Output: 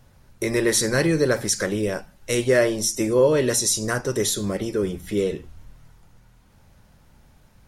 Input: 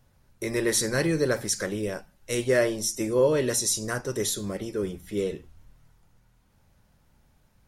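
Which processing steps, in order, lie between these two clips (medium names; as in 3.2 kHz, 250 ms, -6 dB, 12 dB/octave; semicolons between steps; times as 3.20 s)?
treble shelf 12 kHz -4 dB; in parallel at +0.5 dB: compression, threshold -34 dBFS, peak gain reduction 16 dB; on the sum: trim +2.5 dB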